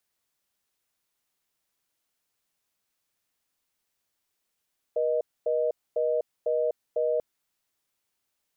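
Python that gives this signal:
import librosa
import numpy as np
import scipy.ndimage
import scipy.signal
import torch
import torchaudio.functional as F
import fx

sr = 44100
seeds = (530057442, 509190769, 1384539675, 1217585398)

y = fx.call_progress(sr, length_s=2.24, kind='reorder tone', level_db=-25.5)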